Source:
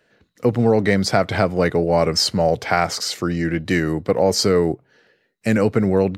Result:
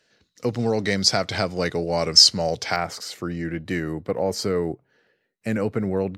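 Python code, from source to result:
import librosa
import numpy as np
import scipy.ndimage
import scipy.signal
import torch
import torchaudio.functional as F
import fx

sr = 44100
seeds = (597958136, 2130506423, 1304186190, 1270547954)

y = fx.peak_eq(x, sr, hz=5400.0, db=fx.steps((0.0, 14.5), (2.76, -3.0)), octaves=1.5)
y = y * librosa.db_to_amplitude(-7.0)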